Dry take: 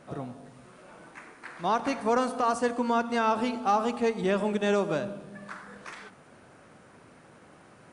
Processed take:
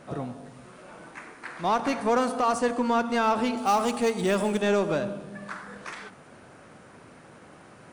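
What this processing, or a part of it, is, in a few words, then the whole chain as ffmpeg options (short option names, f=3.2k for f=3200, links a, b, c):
parallel distortion: -filter_complex "[0:a]asplit=2[a][b];[b]asoftclip=type=hard:threshold=-30.5dB,volume=-4.5dB[c];[a][c]amix=inputs=2:normalize=0,asettb=1/sr,asplit=3[d][e][f];[d]atrim=end=3.574[g];[e]atrim=start=3.57:end=4.62,asetpts=PTS-STARTPTS,afade=t=in:d=0.004:c=qsin,afade=t=out:st=1.046:d=0.004:c=qsin,aemphasis=mode=production:type=50fm[h];[f]atrim=start=4.616[i];[g][h]acrossfade=d=0.004:c1=hsin:c2=qsin[j];[j][i]acrossfade=d=0.004:c1=qsin:c2=hsin"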